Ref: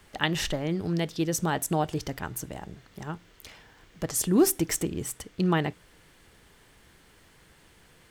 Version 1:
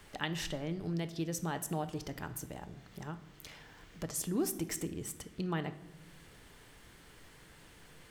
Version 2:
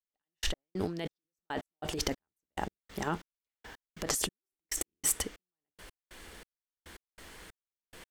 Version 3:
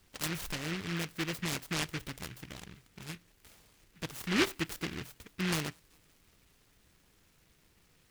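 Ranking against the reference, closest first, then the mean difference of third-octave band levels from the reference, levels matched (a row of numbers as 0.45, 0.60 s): 1, 3, 2; 4.0, 7.5, 18.0 dB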